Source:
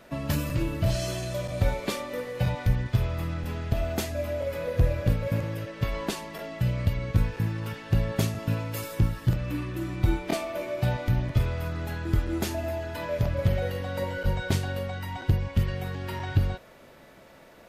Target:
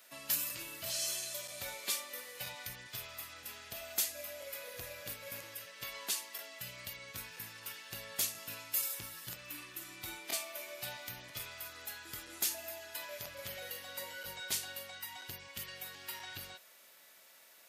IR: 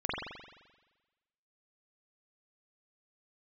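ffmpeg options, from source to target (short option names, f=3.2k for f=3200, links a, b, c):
-af "aderivative,bandreject=f=164.6:t=h:w=4,bandreject=f=329.2:t=h:w=4,bandreject=f=493.8:t=h:w=4,volume=4dB"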